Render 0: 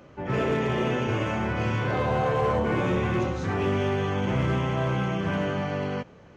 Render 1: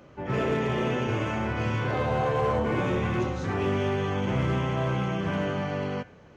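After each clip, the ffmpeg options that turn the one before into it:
-af "bandreject=f=92.01:t=h:w=4,bandreject=f=184.02:t=h:w=4,bandreject=f=276.03:t=h:w=4,bandreject=f=368.04:t=h:w=4,bandreject=f=460.05:t=h:w=4,bandreject=f=552.06:t=h:w=4,bandreject=f=644.07:t=h:w=4,bandreject=f=736.08:t=h:w=4,bandreject=f=828.09:t=h:w=4,bandreject=f=920.1:t=h:w=4,bandreject=f=1.01211k:t=h:w=4,bandreject=f=1.10412k:t=h:w=4,bandreject=f=1.19613k:t=h:w=4,bandreject=f=1.28814k:t=h:w=4,bandreject=f=1.38015k:t=h:w=4,bandreject=f=1.47216k:t=h:w=4,bandreject=f=1.56417k:t=h:w=4,bandreject=f=1.65618k:t=h:w=4,bandreject=f=1.74819k:t=h:w=4,bandreject=f=1.8402k:t=h:w=4,bandreject=f=1.93221k:t=h:w=4,bandreject=f=2.02422k:t=h:w=4,bandreject=f=2.11623k:t=h:w=4,bandreject=f=2.20824k:t=h:w=4,bandreject=f=2.30025k:t=h:w=4,bandreject=f=2.39226k:t=h:w=4,bandreject=f=2.48427k:t=h:w=4,bandreject=f=2.57628k:t=h:w=4,bandreject=f=2.66829k:t=h:w=4,bandreject=f=2.7603k:t=h:w=4,bandreject=f=2.85231k:t=h:w=4,bandreject=f=2.94432k:t=h:w=4,volume=-1dB"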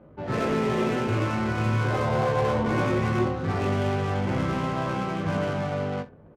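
-filter_complex "[0:a]adynamicsmooth=sensitivity=7:basefreq=690,asplit=2[a][b];[b]aecho=0:1:19|64:0.531|0.126[c];[a][c]amix=inputs=2:normalize=0,volume=1dB"

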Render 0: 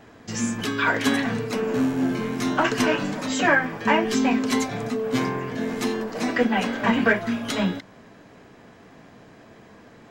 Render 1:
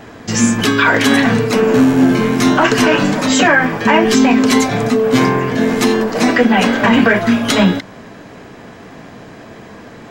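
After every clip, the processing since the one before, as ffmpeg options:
-af "alimiter=level_in=14dB:limit=-1dB:release=50:level=0:latency=1,volume=-1dB"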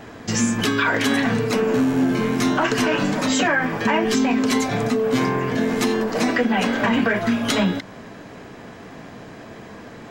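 -af "acompressor=threshold=-16dB:ratio=2,volume=-3.5dB"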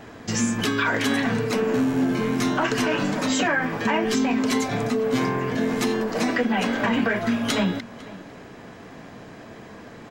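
-filter_complex "[0:a]asplit=2[a][b];[b]adelay=501.5,volume=-18dB,highshelf=f=4k:g=-11.3[c];[a][c]amix=inputs=2:normalize=0,volume=-3dB"

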